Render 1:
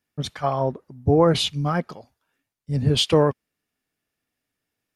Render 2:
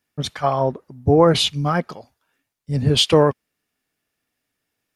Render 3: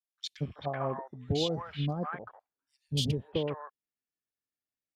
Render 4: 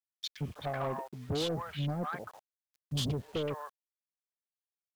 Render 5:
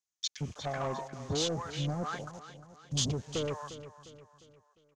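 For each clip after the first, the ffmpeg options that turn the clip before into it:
ffmpeg -i in.wav -af "lowshelf=frequency=360:gain=-3,volume=4.5dB" out.wav
ffmpeg -i in.wav -filter_complex "[0:a]acompressor=threshold=-22dB:ratio=5,afwtdn=0.0112,acrossover=split=830|2600[link_01][link_02][link_03];[link_01]adelay=230[link_04];[link_02]adelay=380[link_05];[link_04][link_05][link_03]amix=inputs=3:normalize=0,volume=-5.5dB" out.wav
ffmpeg -i in.wav -af "acrusher=bits=9:mix=0:aa=0.000001,asoftclip=type=tanh:threshold=-29.5dB,volume=1.5dB" out.wav
ffmpeg -i in.wav -af "lowpass=frequency=6500:width_type=q:width=4.8,aecho=1:1:353|706|1059|1412:0.211|0.0951|0.0428|0.0193" out.wav

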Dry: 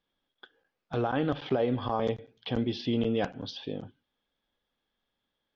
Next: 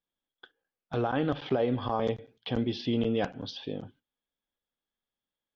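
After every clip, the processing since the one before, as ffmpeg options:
ffmpeg -i in.wav -af "agate=range=-11dB:threshold=-56dB:ratio=16:detection=peak" out.wav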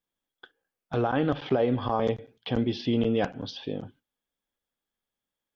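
ffmpeg -i in.wav -af "equalizer=frequency=3900:width_type=o:width=0.77:gain=-2.5,volume=3dB" out.wav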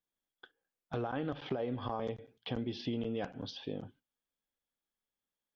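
ffmpeg -i in.wav -af "acompressor=threshold=-26dB:ratio=6,volume=-6dB" out.wav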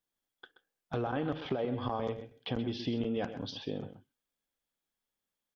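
ffmpeg -i in.wav -filter_complex "[0:a]asplit=2[link_01][link_02];[link_02]adelay=128.3,volume=-11dB,highshelf=frequency=4000:gain=-2.89[link_03];[link_01][link_03]amix=inputs=2:normalize=0,volume=2.5dB" out.wav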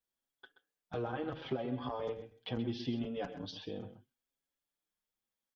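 ffmpeg -i in.wav -filter_complex "[0:a]asplit=2[link_01][link_02];[link_02]adelay=5.8,afreqshift=0.75[link_03];[link_01][link_03]amix=inputs=2:normalize=1,volume=-1dB" out.wav

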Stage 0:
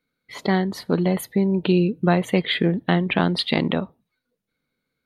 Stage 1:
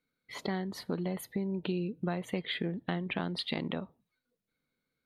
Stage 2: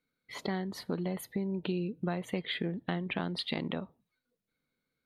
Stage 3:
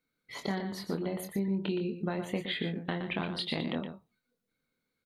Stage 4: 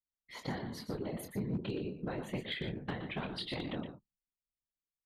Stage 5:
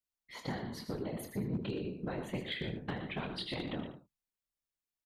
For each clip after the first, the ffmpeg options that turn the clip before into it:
ffmpeg -i in.wav -af "acompressor=threshold=-28dB:ratio=2.5,volume=-6dB" out.wav
ffmpeg -i in.wav -af anull out.wav
ffmpeg -i in.wav -filter_complex "[0:a]asplit=2[link_01][link_02];[link_02]adelay=25,volume=-7dB[link_03];[link_01][link_03]amix=inputs=2:normalize=0,aecho=1:1:119:0.376" out.wav
ffmpeg -i in.wav -af "afftfilt=real='hypot(re,im)*cos(2*PI*random(0))':imag='hypot(re,im)*sin(2*PI*random(1))':win_size=512:overlap=0.75,anlmdn=0.0000158,volume=29.5dB,asoftclip=hard,volume=-29.5dB,volume=1dB" out.wav
ffmpeg -i in.wav -af "aecho=1:1:78:0.251" out.wav

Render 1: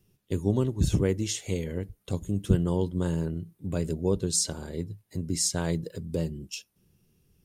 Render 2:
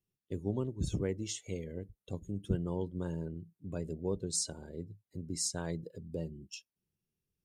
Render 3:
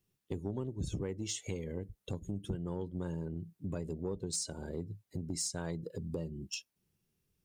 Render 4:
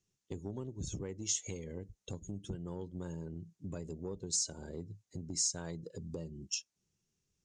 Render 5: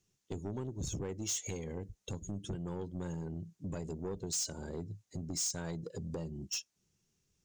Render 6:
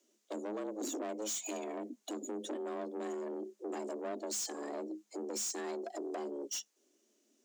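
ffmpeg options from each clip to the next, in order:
ffmpeg -i in.wav -af "afftdn=noise_reduction=13:noise_floor=-42,lowshelf=frequency=220:gain=-3.5,volume=-7.5dB" out.wav
ffmpeg -i in.wav -af "acompressor=threshold=-42dB:ratio=4,asoftclip=type=tanh:threshold=-33dB,volume=8dB" out.wav
ffmpeg -i in.wav -af "lowpass=frequency=6600:width_type=q:width=3.8,volume=-4dB" out.wav
ffmpeg -i in.wav -af "asoftclip=type=tanh:threshold=-36dB,volume=4.5dB" out.wav
ffmpeg -i in.wav -af "asoftclip=type=tanh:threshold=-39.5dB,afreqshift=210,volume=4dB" out.wav

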